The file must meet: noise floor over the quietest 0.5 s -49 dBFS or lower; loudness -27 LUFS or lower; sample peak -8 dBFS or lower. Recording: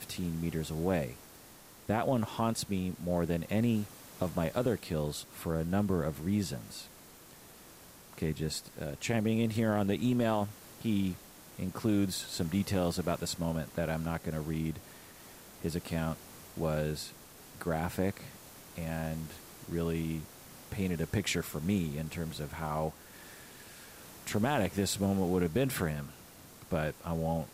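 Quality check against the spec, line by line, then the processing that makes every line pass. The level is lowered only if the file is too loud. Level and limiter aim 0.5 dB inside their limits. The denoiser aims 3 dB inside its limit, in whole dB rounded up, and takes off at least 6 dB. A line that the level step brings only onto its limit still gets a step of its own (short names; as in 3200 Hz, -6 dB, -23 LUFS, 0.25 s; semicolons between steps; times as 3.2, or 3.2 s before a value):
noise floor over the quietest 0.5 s -54 dBFS: OK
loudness -33.5 LUFS: OK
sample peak -15.5 dBFS: OK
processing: none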